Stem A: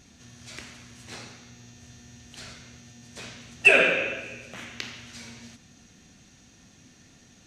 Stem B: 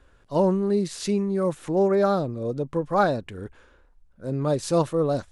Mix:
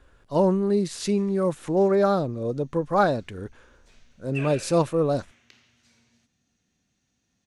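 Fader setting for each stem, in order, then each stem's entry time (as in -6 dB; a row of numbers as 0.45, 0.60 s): -19.5, +0.5 dB; 0.70, 0.00 s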